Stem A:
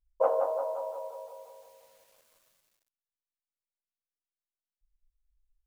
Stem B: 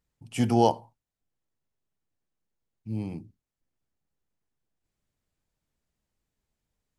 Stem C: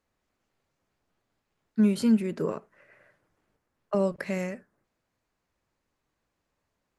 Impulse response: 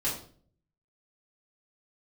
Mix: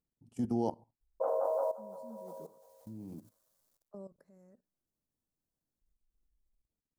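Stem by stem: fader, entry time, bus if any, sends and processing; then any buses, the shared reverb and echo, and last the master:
+3.0 dB, 1.00 s, no send, none
-10.0 dB, 0.00 s, no send, peaking EQ 270 Hz +9 dB 1.4 oct
-19.5 dB, 0.00 s, no send, peaking EQ 2.8 kHz -12 dB 1.2 oct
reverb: none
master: level held to a coarse grid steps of 15 dB; peaking EQ 2.5 kHz -14 dB 1.3 oct

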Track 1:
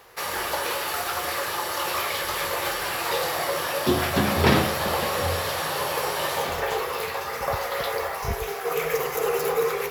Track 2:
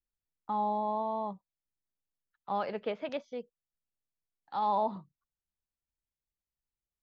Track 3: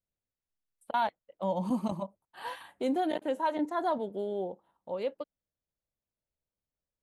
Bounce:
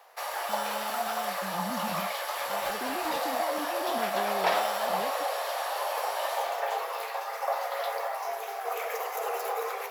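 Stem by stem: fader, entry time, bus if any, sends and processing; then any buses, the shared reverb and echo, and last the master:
+2.5 dB, 0.00 s, no bus, no send, ladder high-pass 600 Hz, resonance 60%
-4.0 dB, 0.00 s, bus A, no send, sample-rate reducer 2.2 kHz, jitter 0%
-12.5 dB, 0.00 s, bus A, no send, peaking EQ 190 Hz +14 dB 2.4 oct
bus A: 0.0 dB, peak limiter -31.5 dBFS, peak gain reduction 10.5 dB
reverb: none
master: none

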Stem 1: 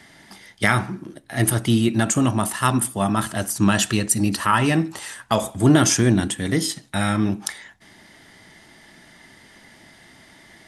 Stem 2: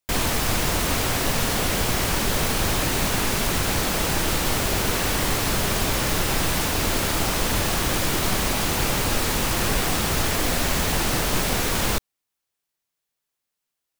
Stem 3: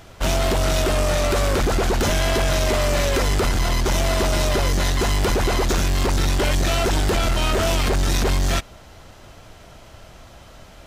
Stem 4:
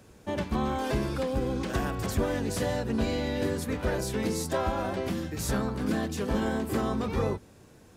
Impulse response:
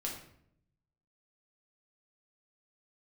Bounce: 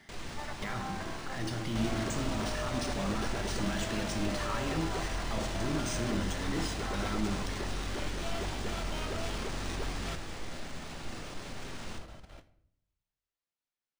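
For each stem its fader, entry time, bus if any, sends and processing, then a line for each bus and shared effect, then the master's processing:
-11.5 dB, 0.00 s, bus A, send -8.5 dB, peak limiter -11.5 dBFS, peak gain reduction 8.5 dB
-11.5 dB, 0.00 s, bus B, send -9 dB, peak limiter -16 dBFS, peak gain reduction 7 dB
-6.5 dB, 1.55 s, bus B, send -12.5 dB, compression 3:1, threshold -28 dBFS, peak gain reduction 8.5 dB
-4.0 dB, 0.10 s, bus A, no send, elliptic band-pass 700–2000 Hz
bus A: 0.0 dB, peak limiter -31.5 dBFS, peak gain reduction 11.5 dB
bus B: 0.0 dB, level held to a coarse grid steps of 17 dB; peak limiter -31 dBFS, peak gain reduction 7 dB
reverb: on, RT60 0.70 s, pre-delay 5 ms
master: decimation joined by straight lines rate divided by 3×

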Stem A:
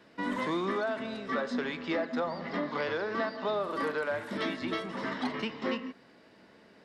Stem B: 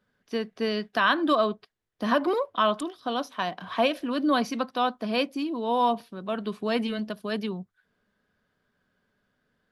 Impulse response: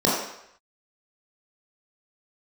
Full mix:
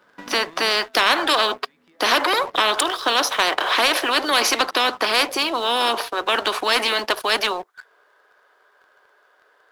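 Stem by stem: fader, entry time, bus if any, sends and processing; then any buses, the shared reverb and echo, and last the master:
-3.0 dB, 0.00 s, no send, compression 8:1, threshold -36 dBFS, peak gain reduction 9.5 dB; auto duck -13 dB, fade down 1.25 s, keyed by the second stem
-3.5 dB, 0.00 s, no send, steep high-pass 350 Hz 48 dB/octave; peaking EQ 1 kHz +10.5 dB 1.4 oct; spectrum-flattening compressor 4:1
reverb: none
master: waveshaping leveller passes 2

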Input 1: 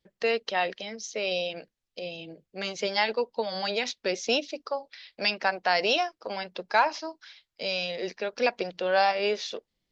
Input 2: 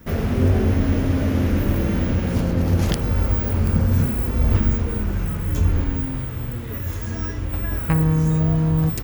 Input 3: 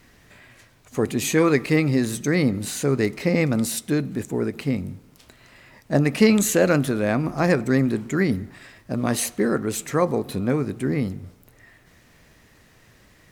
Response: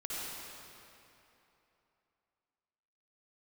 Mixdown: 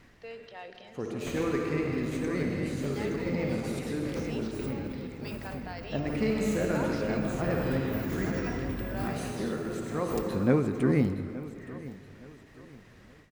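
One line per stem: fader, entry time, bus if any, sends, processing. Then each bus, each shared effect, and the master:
-19.5 dB, 0.00 s, send -9 dB, no echo send, decay stretcher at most 39 dB/s
-13.0 dB, 1.20 s, send -4.5 dB, echo send -14.5 dB, compressor with a negative ratio -27 dBFS, ratio -1; tilt EQ +1.5 dB/octave
-2.0 dB, 0.00 s, send -12.5 dB, echo send -17 dB, auto duck -17 dB, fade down 0.70 s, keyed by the first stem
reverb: on, RT60 3.1 s, pre-delay 51 ms
echo: feedback delay 870 ms, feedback 35%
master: low-pass 3.1 kHz 6 dB/octave; endings held to a fixed fall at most 110 dB/s

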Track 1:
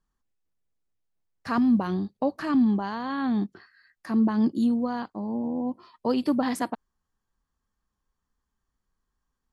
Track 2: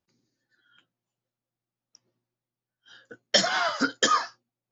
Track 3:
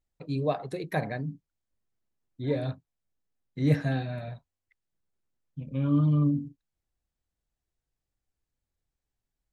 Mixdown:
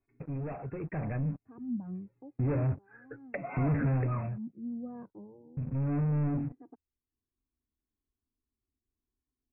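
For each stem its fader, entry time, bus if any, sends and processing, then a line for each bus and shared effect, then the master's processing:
-4.0 dB, 0.00 s, bus A, no send, band-pass filter 240 Hz, Q 1.2; auto duck -17 dB, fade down 0.50 s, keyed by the third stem
-1.5 dB, 0.00 s, bus A, no send, peaking EQ 2.1 kHz +7 dB 0.26 oct; comb 7.2 ms, depth 93%
0.73 s -22 dB -> 1.52 s -11.5 dB -> 3.96 s -11.5 dB -> 4.40 s -22.5 dB -> 5.27 s -22.5 dB -> 5.95 s -14.5 dB, 0.00 s, no bus, no send, peaking EQ 84 Hz +11.5 dB 0.4 oct; waveshaping leveller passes 5
bus A: 0.0 dB, touch-sensitive flanger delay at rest 2.8 ms, full sweep at -21 dBFS; compression 6:1, threshold -30 dBFS, peak gain reduction 13.5 dB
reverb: none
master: brick-wall FIR low-pass 2.7 kHz; bass shelf 330 Hz +10.5 dB; compression 1.5:1, threshold -40 dBFS, peak gain reduction 8 dB

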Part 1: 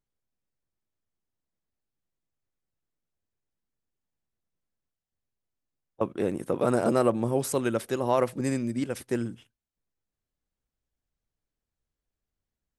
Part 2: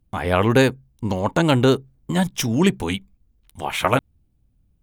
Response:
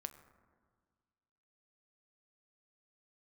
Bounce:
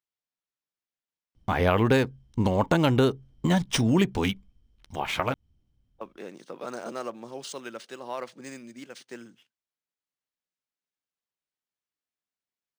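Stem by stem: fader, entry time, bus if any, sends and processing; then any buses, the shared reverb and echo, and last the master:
-9.5 dB, 0.00 s, no send, high-pass 150 Hz 24 dB/octave; tilt shelf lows -6.5 dB, about 810 Hz
+1.0 dB, 1.35 s, no send, compression 3:1, threshold -20 dBFS, peak gain reduction 7.5 dB; auto duck -8 dB, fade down 2.00 s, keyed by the first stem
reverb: none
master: decimation joined by straight lines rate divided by 3×

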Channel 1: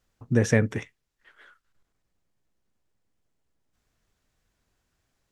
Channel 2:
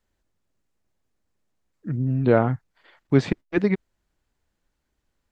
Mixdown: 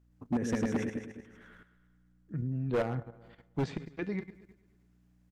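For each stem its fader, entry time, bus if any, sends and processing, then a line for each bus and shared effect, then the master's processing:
-0.5 dB, 0.00 s, no send, echo send -3.5 dB, graphic EQ 125/250/4000/8000 Hz -7/+9/-4/-3 dB; peak limiter -15.5 dBFS, peak gain reduction 9.5 dB; hum 60 Hz, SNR 23 dB
+1.5 dB, 0.45 s, no send, echo send -19.5 dB, feedback comb 160 Hz, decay 0.34 s, harmonics odd, mix 60%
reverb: none
echo: feedback delay 106 ms, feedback 57%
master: level held to a coarse grid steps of 11 dB; hard clipper -25 dBFS, distortion -7 dB

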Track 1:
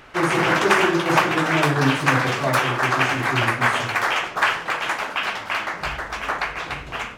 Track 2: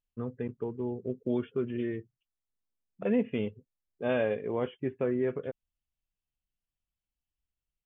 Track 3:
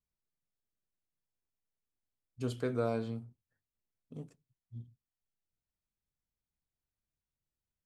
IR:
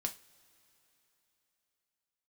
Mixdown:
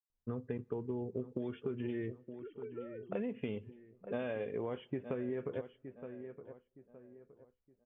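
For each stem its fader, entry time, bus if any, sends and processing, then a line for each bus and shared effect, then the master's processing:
mute
-1.0 dB, 0.10 s, send -14 dB, echo send -13.5 dB, compression, threshold -29 dBFS, peak gain reduction 7.5 dB
-14.5 dB, 0.00 s, no send, no echo send, formants replaced by sine waves; comb 2.2 ms, depth 94%; compression, threshold -28 dBFS, peak gain reduction 8.5 dB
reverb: on, pre-delay 3 ms
echo: feedback delay 917 ms, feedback 33%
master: level-controlled noise filter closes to 1.1 kHz, open at -32 dBFS; compression, threshold -34 dBFS, peak gain reduction 7 dB

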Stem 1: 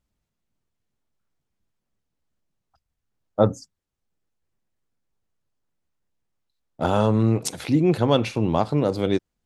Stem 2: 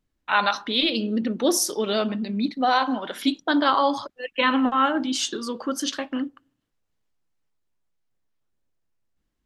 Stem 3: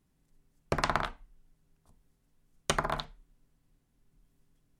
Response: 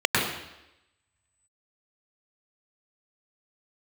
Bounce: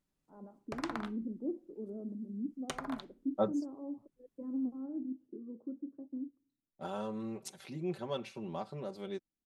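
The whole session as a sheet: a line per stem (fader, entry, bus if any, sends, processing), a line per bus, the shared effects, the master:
3.17 s -9.5 dB -> 3.72 s -20 dB, 0.00 s, no send, comb 5.2 ms, depth 84%
-7.5 dB, 0.00 s, no send, four-pole ladder low-pass 400 Hz, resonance 30%
-11.5 dB, 0.00 s, no send, none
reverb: none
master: bass shelf 130 Hz -8.5 dB

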